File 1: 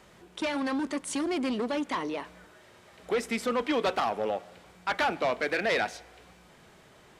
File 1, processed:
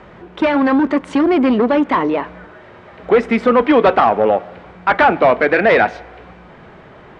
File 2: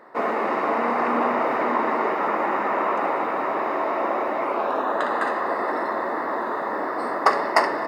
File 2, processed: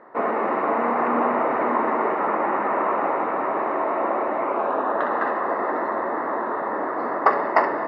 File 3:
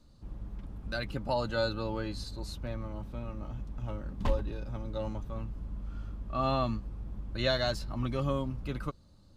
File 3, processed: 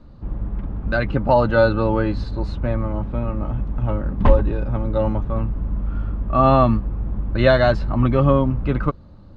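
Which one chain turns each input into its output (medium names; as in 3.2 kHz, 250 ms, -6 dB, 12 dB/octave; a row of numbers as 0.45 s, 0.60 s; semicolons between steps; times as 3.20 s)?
low-pass 1.9 kHz 12 dB/octave; peak normalisation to -1.5 dBFS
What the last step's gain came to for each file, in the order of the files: +16.5 dB, +1.0 dB, +15.5 dB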